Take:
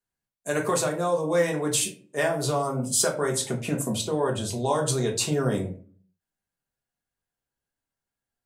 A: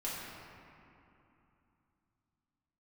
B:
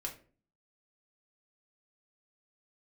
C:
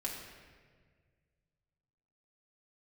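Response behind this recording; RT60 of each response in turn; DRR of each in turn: B; 2.9 s, 0.40 s, 1.7 s; -8.5 dB, -0.5 dB, -4.0 dB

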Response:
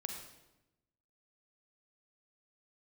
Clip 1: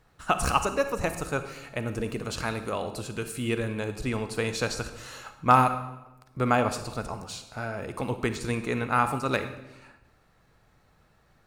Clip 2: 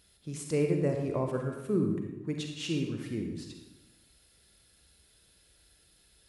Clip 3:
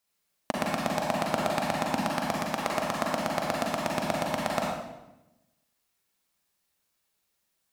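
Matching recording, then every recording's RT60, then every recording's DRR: 2; 0.95 s, 0.95 s, 0.95 s; 9.0 dB, 3.0 dB, -2.5 dB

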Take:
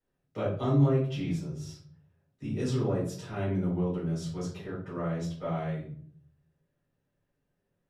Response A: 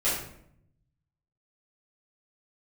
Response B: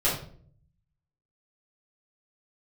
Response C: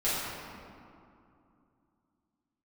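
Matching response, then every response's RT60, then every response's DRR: B; 0.70 s, 0.50 s, 2.6 s; -11.0 dB, -9.0 dB, -12.0 dB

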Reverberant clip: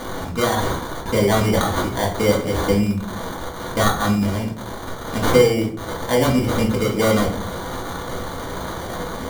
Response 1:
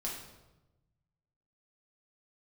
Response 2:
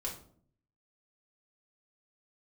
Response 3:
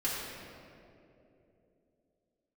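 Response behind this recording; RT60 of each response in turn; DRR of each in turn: 2; 1.0 s, 0.55 s, 3.0 s; -4.0 dB, -3.5 dB, -9.0 dB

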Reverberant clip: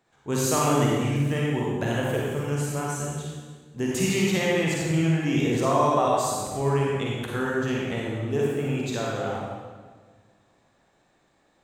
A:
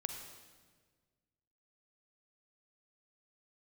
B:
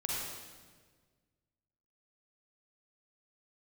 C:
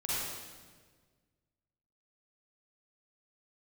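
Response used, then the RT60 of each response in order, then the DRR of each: B; 1.5 s, 1.5 s, 1.5 s; 4.5 dB, -4.5 dB, -9.0 dB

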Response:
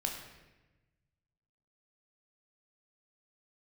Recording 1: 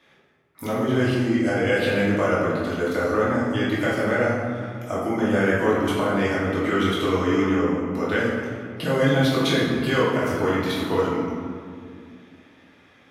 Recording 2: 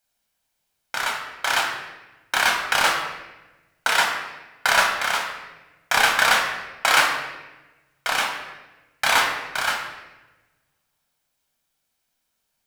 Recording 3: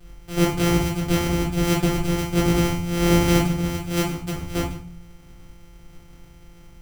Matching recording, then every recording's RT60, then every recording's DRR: 2; 2.2 s, 1.1 s, 0.40 s; -8.5 dB, 1.0 dB, -7.5 dB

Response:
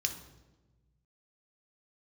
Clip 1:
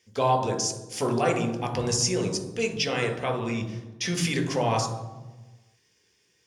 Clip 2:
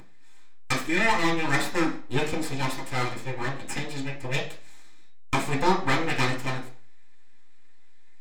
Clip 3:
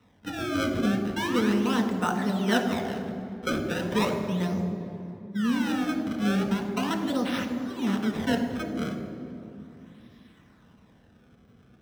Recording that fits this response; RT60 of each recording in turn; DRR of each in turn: 1; 1.2 s, 0.45 s, 2.7 s; 5.0 dB, -4.5 dB, 2.5 dB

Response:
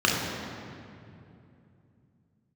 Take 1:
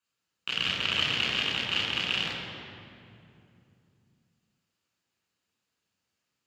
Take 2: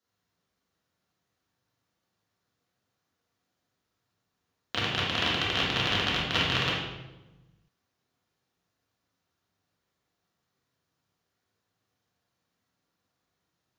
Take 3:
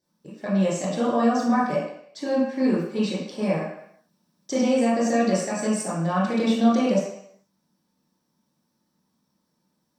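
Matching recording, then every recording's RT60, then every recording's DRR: 1; 2.7 s, 1.1 s, 0.70 s; -3.5 dB, -6.0 dB, -8.5 dB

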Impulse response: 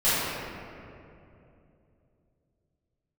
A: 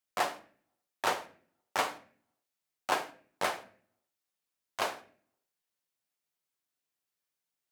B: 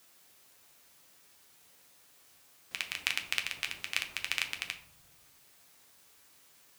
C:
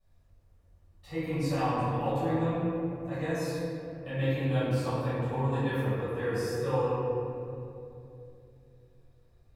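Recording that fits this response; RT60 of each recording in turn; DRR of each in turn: C; 0.50 s, 0.65 s, 2.8 s; 7.0 dB, 4.5 dB, -16.0 dB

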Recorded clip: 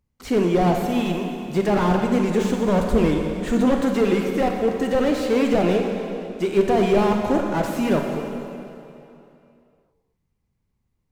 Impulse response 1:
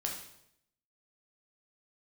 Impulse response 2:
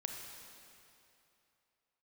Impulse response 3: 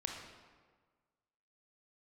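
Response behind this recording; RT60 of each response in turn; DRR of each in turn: 2; 0.75 s, 2.8 s, 1.5 s; -0.5 dB, 2.0 dB, 1.0 dB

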